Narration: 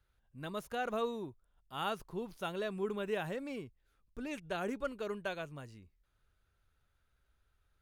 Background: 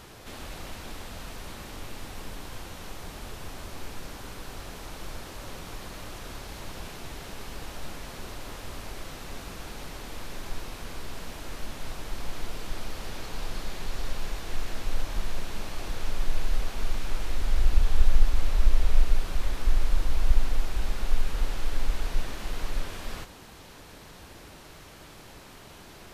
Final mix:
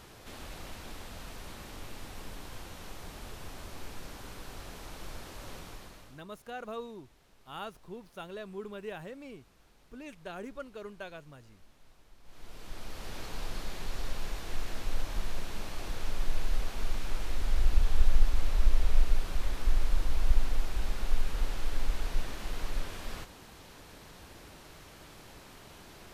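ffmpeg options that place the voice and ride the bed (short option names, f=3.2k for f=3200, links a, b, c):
-filter_complex "[0:a]adelay=5750,volume=-4.5dB[a];[1:a]volume=16dB,afade=t=out:st=5.56:d=0.67:silence=0.105925,afade=t=in:st=12.23:d=0.98:silence=0.0944061[b];[a][b]amix=inputs=2:normalize=0"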